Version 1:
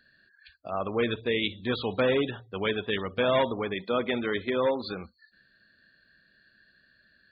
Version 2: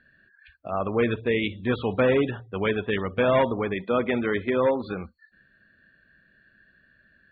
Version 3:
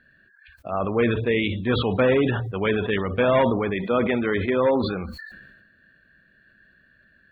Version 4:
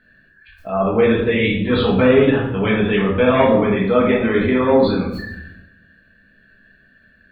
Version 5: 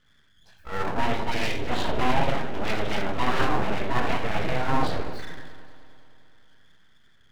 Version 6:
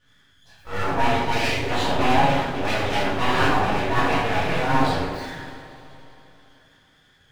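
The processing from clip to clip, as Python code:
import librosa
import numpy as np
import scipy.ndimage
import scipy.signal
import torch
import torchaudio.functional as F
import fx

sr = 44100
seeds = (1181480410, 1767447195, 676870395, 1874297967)

y1 = scipy.signal.sosfilt(scipy.signal.butter(4, 2800.0, 'lowpass', fs=sr, output='sos'), x)
y1 = fx.low_shelf(y1, sr, hz=200.0, db=4.5)
y1 = y1 * librosa.db_to_amplitude(3.0)
y2 = fx.sustainer(y1, sr, db_per_s=42.0)
y2 = y2 * librosa.db_to_amplitude(1.5)
y3 = fx.room_shoebox(y2, sr, seeds[0], volume_m3=190.0, walls='mixed', distance_m=1.5)
y4 = np.abs(y3)
y4 = fx.echo_heads(y4, sr, ms=103, heads='second and third', feedback_pct=55, wet_db=-19.5)
y4 = y4 * librosa.db_to_amplitude(-7.0)
y5 = fx.rev_double_slope(y4, sr, seeds[1], early_s=0.45, late_s=3.5, knee_db=-21, drr_db=-8.0)
y5 = y5 * librosa.db_to_amplitude(-3.0)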